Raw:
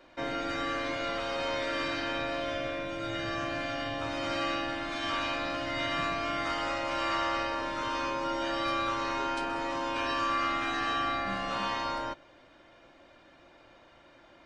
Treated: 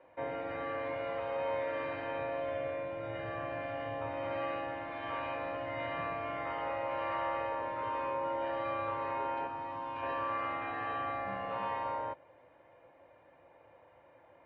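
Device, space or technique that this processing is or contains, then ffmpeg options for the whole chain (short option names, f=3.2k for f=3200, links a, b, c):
bass cabinet: -filter_complex "[0:a]highpass=76,equalizer=f=100:t=q:w=4:g=6,equalizer=f=230:t=q:w=4:g=-8,equalizer=f=340:t=q:w=4:g=-5,equalizer=f=500:t=q:w=4:g=9,equalizer=f=890:t=q:w=4:g=6,equalizer=f=1.4k:t=q:w=4:g=-7,lowpass=f=2.3k:w=0.5412,lowpass=f=2.3k:w=1.3066,asettb=1/sr,asplit=3[a][b][c];[a]atrim=end=9.474[d];[b]atrim=start=9.47:end=10.03,asetpts=PTS-STARTPTS,afade=t=in:d=0.004:c=qsin,afade=t=out:st=0.556:d=0.004:c=qsin,equalizer=f=500:t=o:w=1:g=-10,equalizer=f=2k:t=o:w=1:g=-6,equalizer=f=8k:t=o:w=1:g=9[e];[c]atrim=start=10.026[f];[d][e]acrossfade=d=0.004:c1=hsin:c2=qsin[g];[g][f]acrossfade=d=0.004:c1=qsin:c2=hsin,volume=-5dB"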